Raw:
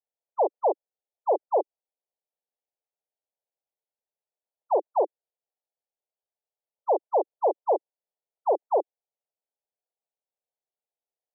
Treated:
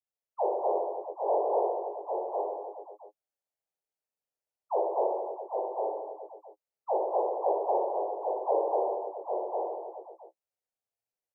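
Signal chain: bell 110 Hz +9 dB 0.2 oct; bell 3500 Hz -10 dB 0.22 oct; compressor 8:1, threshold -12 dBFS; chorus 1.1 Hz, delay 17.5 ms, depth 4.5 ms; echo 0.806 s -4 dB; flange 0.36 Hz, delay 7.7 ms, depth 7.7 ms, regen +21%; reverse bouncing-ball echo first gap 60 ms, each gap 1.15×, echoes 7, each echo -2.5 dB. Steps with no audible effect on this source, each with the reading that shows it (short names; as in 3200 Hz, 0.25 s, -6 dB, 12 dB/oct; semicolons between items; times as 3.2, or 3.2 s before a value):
bell 110 Hz: input band starts at 300 Hz; bell 3500 Hz: input band ends at 1100 Hz; compressor, threshold -12 dBFS: input peak -14.5 dBFS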